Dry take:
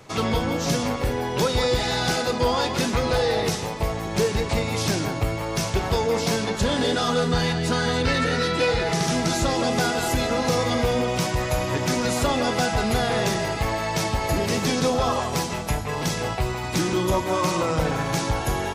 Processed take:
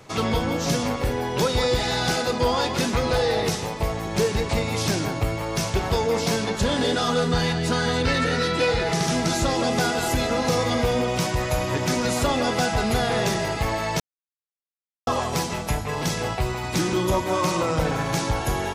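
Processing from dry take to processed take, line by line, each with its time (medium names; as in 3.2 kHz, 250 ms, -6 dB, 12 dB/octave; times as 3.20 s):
14.00–15.07 s: mute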